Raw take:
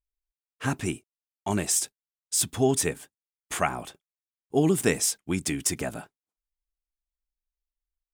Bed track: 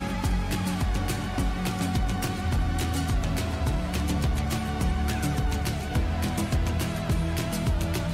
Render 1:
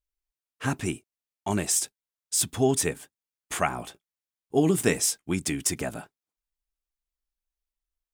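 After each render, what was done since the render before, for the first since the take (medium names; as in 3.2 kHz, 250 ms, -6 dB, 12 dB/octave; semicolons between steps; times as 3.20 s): 3.74–5.34 s: doubling 17 ms -11.5 dB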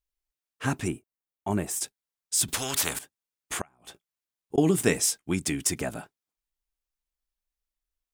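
0.88–1.81 s: peaking EQ 4.8 kHz -12 dB 2.2 oct; 2.48–2.99 s: spectrum-flattening compressor 4:1; 3.58–4.58 s: inverted gate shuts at -21 dBFS, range -33 dB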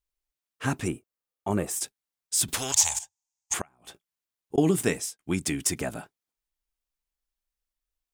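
0.80–1.68 s: small resonant body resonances 500/1200 Hz, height 7 dB -> 11 dB; 2.72–3.54 s: FFT filter 100 Hz 0 dB, 250 Hz -28 dB, 440 Hz -21 dB, 860 Hz +7 dB, 1.3 kHz -13 dB, 2.3 kHz -4 dB, 4.2 kHz -1 dB, 6.7 kHz +14 dB, 11 kHz -7 dB; 4.63–5.19 s: fade out equal-power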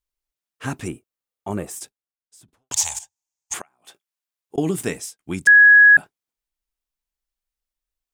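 1.48–2.71 s: studio fade out; 3.59–4.56 s: high-pass 530 Hz 6 dB/octave; 5.47–5.97 s: bleep 1.67 kHz -6.5 dBFS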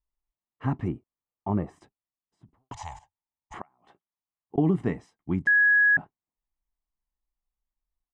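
Bessel low-pass 930 Hz, order 2; comb 1 ms, depth 46%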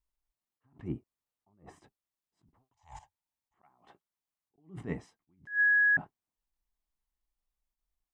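peak limiter -21 dBFS, peak gain reduction 8 dB; attacks held to a fixed rise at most 200 dB/s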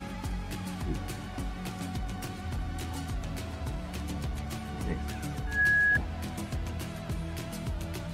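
add bed track -9 dB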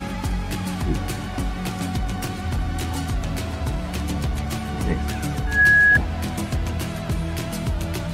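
trim +10 dB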